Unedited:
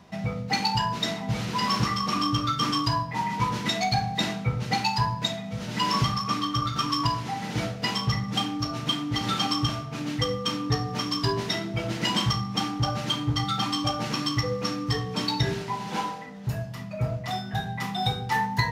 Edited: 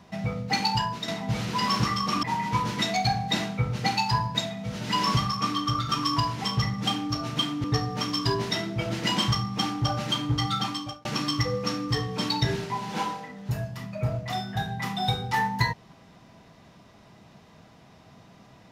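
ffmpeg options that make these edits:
-filter_complex "[0:a]asplit=6[a][b][c][d][e][f];[a]atrim=end=1.08,asetpts=PTS-STARTPTS,afade=t=out:st=0.75:d=0.33:silence=0.398107[g];[b]atrim=start=1.08:end=2.232,asetpts=PTS-STARTPTS,afade=t=in:d=0.004:c=hsin:silence=0.398107[h];[c]atrim=start=3.098:end=7.312[i];[d]atrim=start=7.938:end=9.142[j];[e]atrim=start=10.618:end=14.03,asetpts=PTS-STARTPTS,afade=t=out:st=2.912:d=0.5[k];[f]atrim=start=14.03,asetpts=PTS-STARTPTS,afade=t=in:d=0.004:c=hsin[l];[g][h]concat=n=2:v=0:a=1[m];[m][i]acrossfade=d=0.004:c1=hsin:c2=hsin[n];[n][j]acrossfade=d=0.004:c1=hsin:c2=hsin[o];[k][l]concat=n=2:v=0:a=1[p];[o][p]acrossfade=d=0.004:c1=hsin:c2=hsin"

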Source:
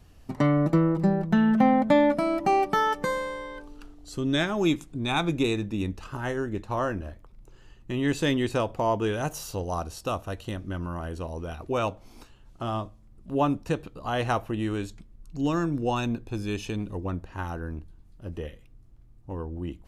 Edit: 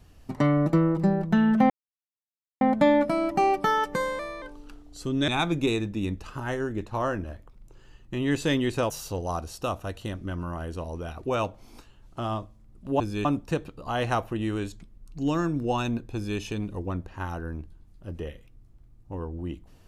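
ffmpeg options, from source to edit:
-filter_complex "[0:a]asplit=8[a][b][c][d][e][f][g][h];[a]atrim=end=1.7,asetpts=PTS-STARTPTS,afade=t=out:st=1.696:d=0.004:c=hsin,apad=pad_dur=0.91[i];[b]atrim=start=1.7:end=3.284,asetpts=PTS-STARTPTS,afade=t=in:d=0.004:c=hsin[j];[c]atrim=start=3.28:end=3.54,asetpts=PTS-STARTPTS,asetrate=49833,aresample=44100[k];[d]atrim=start=3.536:end=4.402[l];[e]atrim=start=5.048:end=8.672[m];[f]atrim=start=9.328:end=13.432[n];[g]atrim=start=16.318:end=16.572[o];[h]atrim=start=13.428[p];[i][j]concat=n=2:v=0:a=1[q];[q][k]acrossfade=d=0.004:c1=hsin:c2=hsin[r];[r][l]acrossfade=d=0.004:c1=hsin:c2=hsin[s];[s][m]acrossfade=d=0.004:c1=hsin:c2=hsin[t];[t][n]acrossfade=d=0.004:c1=hsin:c2=hsin[u];[u][o]acrossfade=d=0.004:c1=hsin:c2=hsin[v];[v][p]acrossfade=d=0.004:c1=hsin:c2=hsin"

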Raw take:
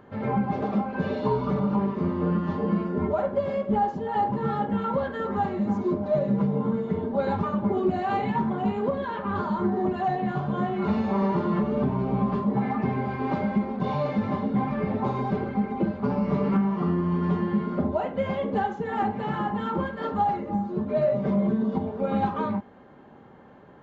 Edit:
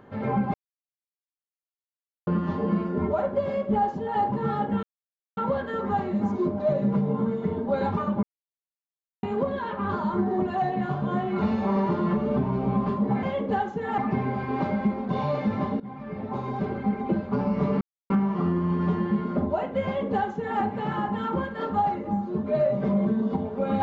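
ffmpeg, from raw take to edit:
-filter_complex "[0:a]asplit=10[a][b][c][d][e][f][g][h][i][j];[a]atrim=end=0.54,asetpts=PTS-STARTPTS,afade=t=out:st=0.536:d=0.004:c=hsin[k];[b]atrim=start=0.54:end=2.27,asetpts=PTS-STARTPTS,volume=0[l];[c]atrim=start=2.27:end=4.83,asetpts=PTS-STARTPTS,afade=t=in:d=0.004:c=hsin,afade=t=out:st=2.556:d=0.004:c=hsin,apad=pad_dur=0.54[m];[d]atrim=start=4.83:end=7.69,asetpts=PTS-STARTPTS,afade=t=in:d=0.004:c=hsin,afade=t=out:st=2.856:d=0.004:c=hsin[n];[e]atrim=start=7.69:end=8.69,asetpts=PTS-STARTPTS,volume=0[o];[f]atrim=start=8.69:end=12.692,asetpts=PTS-STARTPTS,afade=t=in:d=0.004:c=hsin[p];[g]atrim=start=18.268:end=19.022[q];[h]atrim=start=12.688:end=14.51,asetpts=PTS-STARTPTS,afade=t=out:st=1.818:d=0.004:c=hsin:silence=0.133352[r];[i]atrim=start=14.51:end=16.52,asetpts=PTS-STARTPTS,afade=t=in:d=1.07:silence=0.133352,afade=t=out:st=2.006:d=0.004:c=hsin,apad=pad_dur=0.29[s];[j]atrim=start=16.52,asetpts=PTS-STARTPTS,afade=t=in:d=0.004:c=hsin[t];[k][l][m][n][o][p]concat=n=6:v=0:a=1[u];[u][q]acrossfade=d=0.004:c1=hsin:c2=hsin[v];[r][s][t]concat=n=3:v=0:a=1[w];[v][w]acrossfade=d=0.004:c1=hsin:c2=hsin"

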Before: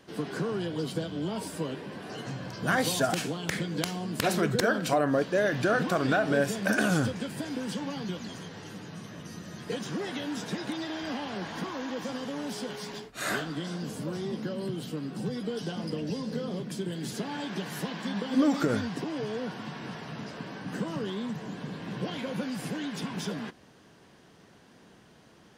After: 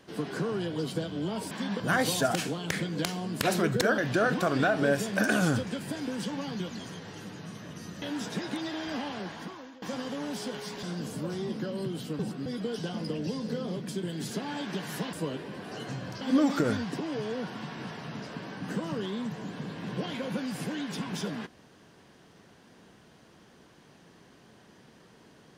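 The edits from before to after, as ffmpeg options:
-filter_complex "[0:a]asplit=11[a][b][c][d][e][f][g][h][i][j][k];[a]atrim=end=1.512[l];[b]atrim=start=17.958:end=18.252[m];[c]atrim=start=2.588:end=4.772[n];[d]atrim=start=5.468:end=9.512[o];[e]atrim=start=10.178:end=11.98,asetpts=PTS-STARTPTS,afade=t=out:st=1.042:d=0.76:silence=0.0891251[p];[f]atrim=start=11.98:end=12.992,asetpts=PTS-STARTPTS,afade=t=in:d=0.004:c=hsin:silence=0.0891251[q];[g]atrim=start=13.658:end=15.022[r];[h]atrim=start=15.018:end=15.292,asetpts=PTS-STARTPTS,areverse[s];[i]atrim=start=15.288:end=17.962[t];[j]atrim=start=1.508:end=2.592[u];[k]atrim=start=18.248[v];[l][m]acrossfade=d=0.004:c1=hsin:c2=hsin[w];[w][n]acrossfade=d=0.004:c1=hsin:c2=hsin[x];[x][o]acrossfade=d=0.004:c1=hsin:c2=hsin[y];[p][q]concat=n=2:v=0:a=1[z];[y][z]acrossfade=d=0.004:c1=hsin:c2=hsin[aa];[aa][r]acrossfade=d=0.004:c1=hsin:c2=hsin[ab];[ab][s]acrossfade=d=0.004:c1=hsin:c2=hsin[ac];[ac][t]acrossfade=d=0.004:c1=hsin:c2=hsin[ad];[ad][u]acrossfade=d=0.004:c1=hsin:c2=hsin[ae];[ae][v]acrossfade=d=0.004:c1=hsin:c2=hsin"

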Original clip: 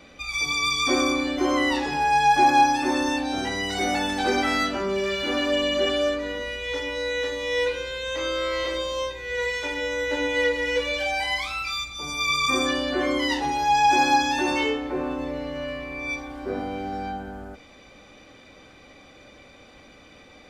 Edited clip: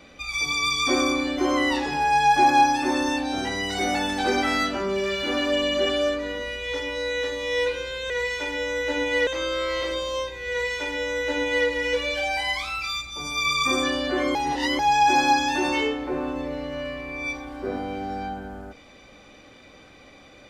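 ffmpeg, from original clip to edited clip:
-filter_complex "[0:a]asplit=5[a][b][c][d][e];[a]atrim=end=8.102[f];[b]atrim=start=9.328:end=10.502[g];[c]atrim=start=8.098:end=13.182[h];[d]atrim=start=13.178:end=13.622,asetpts=PTS-STARTPTS,areverse[i];[e]atrim=start=13.618[j];[f][g]acrossfade=d=0.004:c1=hsin:c2=hsin[k];[k][h]acrossfade=d=0.004:c1=hsin:c2=hsin[l];[l][i]acrossfade=d=0.004:c1=hsin:c2=hsin[m];[m][j]acrossfade=d=0.004:c1=hsin:c2=hsin"

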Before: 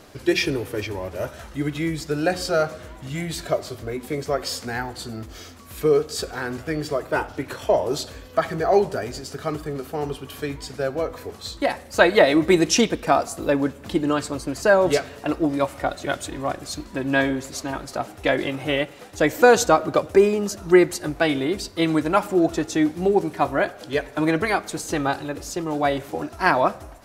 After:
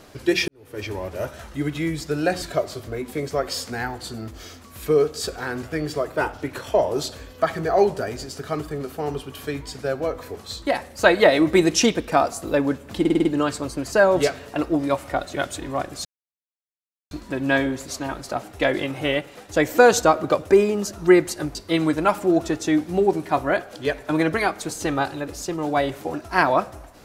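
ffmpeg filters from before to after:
-filter_complex "[0:a]asplit=10[a][b][c][d][e][f][g][h][i][j];[a]atrim=end=0.48,asetpts=PTS-STARTPTS,afade=t=out:st=0.476:d=0.004:c=hsin[k];[b]atrim=start=0.48:end=2.422,asetpts=PTS-STARTPTS,afade=t=in:d=0.4:c=qua[l];[c]atrim=start=3.368:end=14.002[m];[d]atrim=start=13.948:end=14.002[n];[e]atrim=start=13.948:end=14.002[o];[f]atrim=start=13.948:end=14.002[p];[g]atrim=start=13.948:end=14.002[q];[h]atrim=start=13.948:end=16.75,asetpts=PTS-STARTPTS,afade=t=out:st=2.798:d=0.004:c=hsin,apad=pad_dur=1.06[r];[i]atrim=start=16.75:end=21.192,asetpts=PTS-STARTPTS,afade=t=in:d=0.004:c=hsin[s];[j]atrim=start=21.628[t];[k][l]concat=n=2:v=0:a=1[u];[u][m]acrossfade=d=0.004:c1=hsin:c2=hsin[v];[v][n]acrossfade=d=0.004:c1=hsin:c2=hsin[w];[w][o]acrossfade=d=0.004:c1=hsin:c2=hsin[x];[x][p]acrossfade=d=0.004:c1=hsin:c2=hsin[y];[y][q]acrossfade=d=0.004:c1=hsin:c2=hsin[z];[r][s]concat=n=2:v=0:a=1[aa];[z][aa]acrossfade=d=0.004:c1=hsin:c2=hsin[ab];[ab][t]acrossfade=d=0.004:c1=hsin:c2=hsin"

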